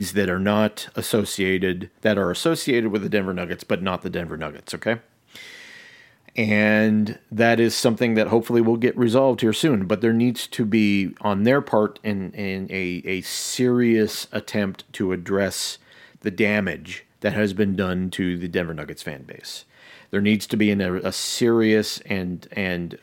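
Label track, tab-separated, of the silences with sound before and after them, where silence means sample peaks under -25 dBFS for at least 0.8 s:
5.360000	6.380000	silence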